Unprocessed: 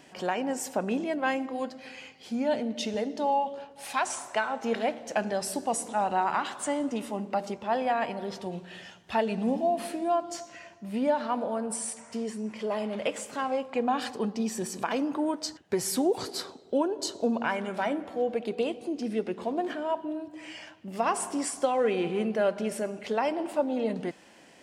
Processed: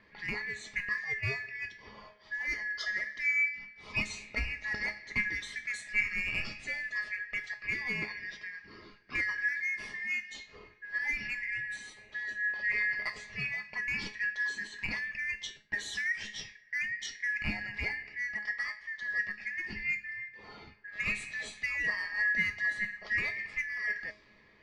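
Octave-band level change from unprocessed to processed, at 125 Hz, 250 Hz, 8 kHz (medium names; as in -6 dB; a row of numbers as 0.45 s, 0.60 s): -3.5 dB, -19.5 dB, -13.0 dB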